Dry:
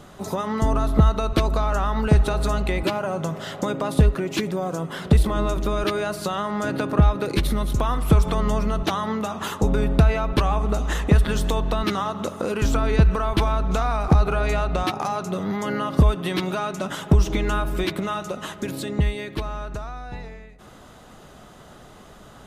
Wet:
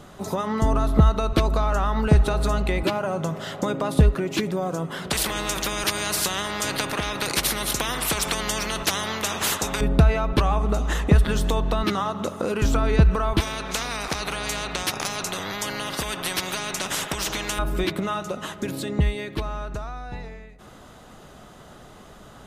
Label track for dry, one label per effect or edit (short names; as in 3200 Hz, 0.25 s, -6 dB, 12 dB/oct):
5.100000	9.810000	spectral compressor 4:1
13.400000	17.590000	spectral compressor 4:1